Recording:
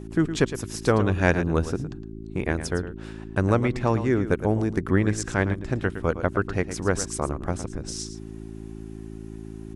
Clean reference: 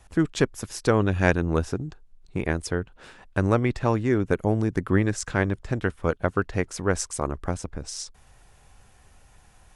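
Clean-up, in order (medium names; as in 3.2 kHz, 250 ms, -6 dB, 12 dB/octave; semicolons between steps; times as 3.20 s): de-hum 54.4 Hz, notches 7; inverse comb 112 ms -11.5 dB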